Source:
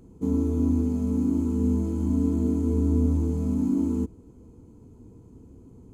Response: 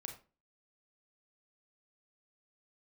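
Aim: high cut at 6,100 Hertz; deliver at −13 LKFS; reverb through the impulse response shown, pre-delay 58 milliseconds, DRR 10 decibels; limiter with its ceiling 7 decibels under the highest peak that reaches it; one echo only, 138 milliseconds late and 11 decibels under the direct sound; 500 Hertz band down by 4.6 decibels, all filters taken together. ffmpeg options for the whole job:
-filter_complex "[0:a]lowpass=6100,equalizer=frequency=500:width_type=o:gain=-6,alimiter=limit=-20dB:level=0:latency=1,aecho=1:1:138:0.282,asplit=2[link_01][link_02];[1:a]atrim=start_sample=2205,adelay=58[link_03];[link_02][link_03]afir=irnorm=-1:irlink=0,volume=-6.5dB[link_04];[link_01][link_04]amix=inputs=2:normalize=0,volume=16dB"

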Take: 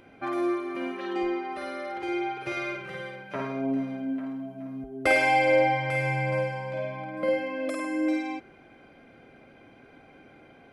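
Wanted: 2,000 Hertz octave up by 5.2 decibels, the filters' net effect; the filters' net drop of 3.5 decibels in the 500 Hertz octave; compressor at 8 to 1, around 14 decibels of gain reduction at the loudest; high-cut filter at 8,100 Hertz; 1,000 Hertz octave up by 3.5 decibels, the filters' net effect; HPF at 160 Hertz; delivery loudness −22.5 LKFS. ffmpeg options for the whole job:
ffmpeg -i in.wav -af "highpass=160,lowpass=8100,equalizer=frequency=500:width_type=o:gain=-6,equalizer=frequency=1000:width_type=o:gain=7,equalizer=frequency=2000:width_type=o:gain=4.5,acompressor=threshold=-30dB:ratio=8,volume=11.5dB" out.wav

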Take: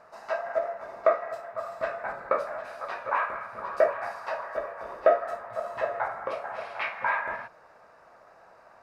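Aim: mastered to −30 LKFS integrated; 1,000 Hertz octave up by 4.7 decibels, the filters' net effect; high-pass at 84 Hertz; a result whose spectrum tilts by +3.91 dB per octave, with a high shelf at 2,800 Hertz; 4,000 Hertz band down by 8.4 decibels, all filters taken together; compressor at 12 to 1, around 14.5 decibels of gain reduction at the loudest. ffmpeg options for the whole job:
ffmpeg -i in.wav -af "highpass=84,equalizer=frequency=1000:width_type=o:gain=7.5,highshelf=frequency=2800:gain=-6,equalizer=frequency=4000:width_type=o:gain=-8,acompressor=threshold=-28dB:ratio=12,volume=4dB" out.wav

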